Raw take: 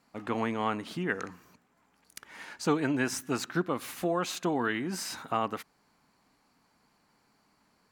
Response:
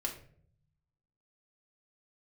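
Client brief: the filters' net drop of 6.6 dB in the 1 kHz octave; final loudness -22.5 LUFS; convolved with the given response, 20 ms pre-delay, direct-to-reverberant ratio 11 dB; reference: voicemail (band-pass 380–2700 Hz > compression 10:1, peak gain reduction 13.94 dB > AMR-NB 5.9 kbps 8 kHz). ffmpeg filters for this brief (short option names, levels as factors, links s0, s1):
-filter_complex "[0:a]equalizer=f=1000:t=o:g=-8.5,asplit=2[s0][s1];[1:a]atrim=start_sample=2205,adelay=20[s2];[s1][s2]afir=irnorm=-1:irlink=0,volume=0.237[s3];[s0][s3]amix=inputs=2:normalize=0,highpass=380,lowpass=2700,acompressor=threshold=0.0112:ratio=10,volume=15.8" -ar 8000 -c:a libopencore_amrnb -b:a 5900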